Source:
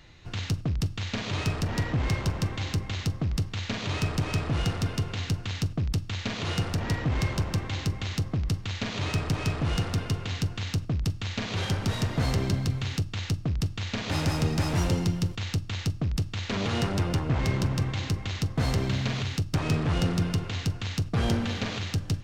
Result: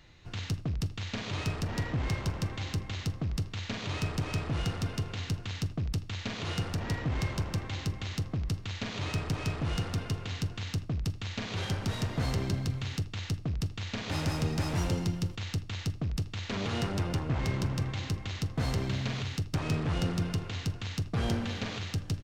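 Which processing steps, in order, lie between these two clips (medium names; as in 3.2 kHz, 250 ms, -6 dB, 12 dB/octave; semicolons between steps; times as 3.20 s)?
speakerphone echo 80 ms, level -15 dB; trim -4.5 dB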